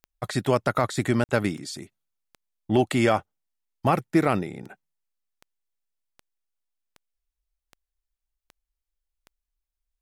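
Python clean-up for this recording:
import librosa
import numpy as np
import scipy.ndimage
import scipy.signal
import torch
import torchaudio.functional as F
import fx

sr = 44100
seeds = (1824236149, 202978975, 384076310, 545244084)

y = fx.fix_declick_ar(x, sr, threshold=10.0)
y = fx.fix_interpolate(y, sr, at_s=(1.24,), length_ms=49.0)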